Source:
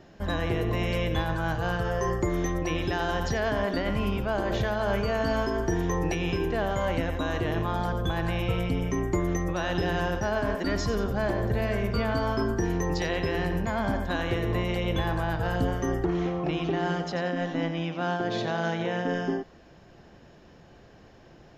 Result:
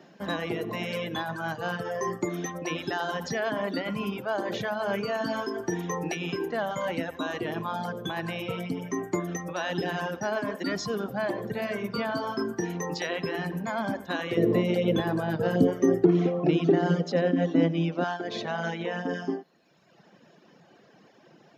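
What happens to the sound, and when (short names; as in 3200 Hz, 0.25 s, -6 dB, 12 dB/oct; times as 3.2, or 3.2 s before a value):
14.37–18.04 resonant low shelf 640 Hz +8 dB, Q 1.5
whole clip: reverb removal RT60 1.3 s; Chebyshev high-pass 170 Hz, order 3; notch 7300 Hz, Q 15; gain +1 dB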